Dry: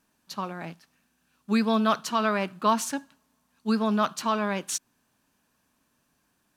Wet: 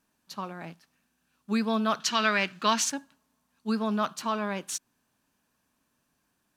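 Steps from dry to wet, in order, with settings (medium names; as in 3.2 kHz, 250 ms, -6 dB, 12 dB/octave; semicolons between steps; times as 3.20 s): 2.00–2.90 s: high-order bell 3.3 kHz +11 dB 2.5 oct; trim -3.5 dB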